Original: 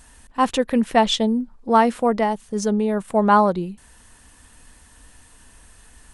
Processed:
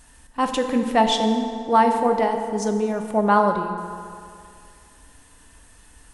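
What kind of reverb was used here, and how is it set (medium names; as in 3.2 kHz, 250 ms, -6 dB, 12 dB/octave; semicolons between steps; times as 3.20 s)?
FDN reverb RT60 2.4 s, low-frequency decay 0.85×, high-frequency decay 0.65×, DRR 4.5 dB; trim -2.5 dB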